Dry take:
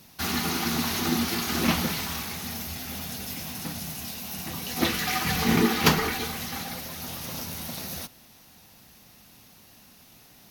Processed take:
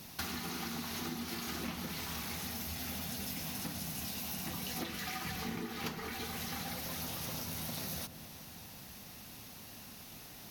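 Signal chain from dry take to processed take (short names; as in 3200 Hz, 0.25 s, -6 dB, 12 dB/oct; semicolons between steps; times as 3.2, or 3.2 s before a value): compressor 20:1, threshold -39 dBFS, peak gain reduction 25.5 dB; darkening echo 0.133 s, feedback 82%, low-pass 980 Hz, level -13.5 dB; gain +2.5 dB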